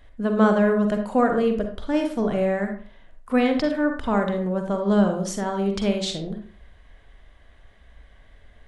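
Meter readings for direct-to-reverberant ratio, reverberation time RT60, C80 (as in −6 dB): 4.0 dB, 0.45 s, 11.0 dB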